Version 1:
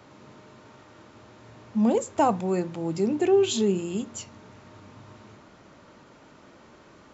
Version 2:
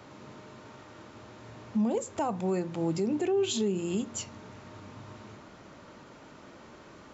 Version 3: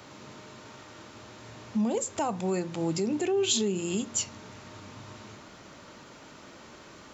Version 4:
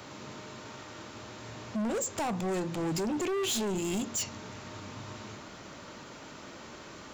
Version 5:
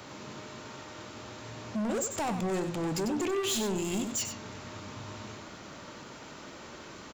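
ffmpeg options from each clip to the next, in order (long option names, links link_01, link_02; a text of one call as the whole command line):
ffmpeg -i in.wav -af "alimiter=limit=-22.5dB:level=0:latency=1:release=243,volume=1.5dB" out.wav
ffmpeg -i in.wav -af "highshelf=frequency=2400:gain=9" out.wav
ffmpeg -i in.wav -af "volume=31.5dB,asoftclip=hard,volume=-31.5dB,volume=2.5dB" out.wav
ffmpeg -i in.wav -af "aecho=1:1:95:0.376" out.wav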